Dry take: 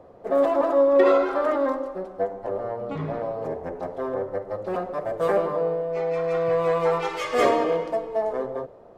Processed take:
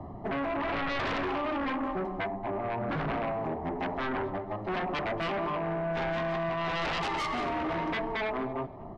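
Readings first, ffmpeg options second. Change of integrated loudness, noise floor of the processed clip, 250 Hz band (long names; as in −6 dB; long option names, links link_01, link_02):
−7.5 dB, −42 dBFS, −3.0 dB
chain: -filter_complex "[0:a]tiltshelf=frequency=630:gain=5,aecho=1:1:1:0.96,acrossover=split=230[link_01][link_02];[link_01]acompressor=threshold=-43dB:ratio=6[link_03];[link_02]alimiter=limit=-20.5dB:level=0:latency=1:release=142[link_04];[link_03][link_04]amix=inputs=2:normalize=0,tremolo=f=1:d=0.44,adynamicsmooth=sensitivity=1.5:basefreq=3500,aeval=exprs='0.106*sin(PI/2*3.55*val(0)/0.106)':channel_layout=same,aecho=1:1:230|460:0.0944|0.0227,volume=-8.5dB"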